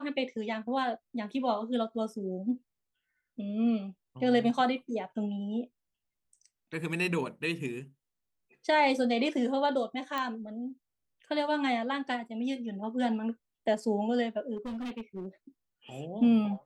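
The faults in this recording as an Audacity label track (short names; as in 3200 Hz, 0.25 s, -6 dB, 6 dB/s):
10.180000	10.180000	pop -19 dBFS
14.560000	15.260000	clipped -34 dBFS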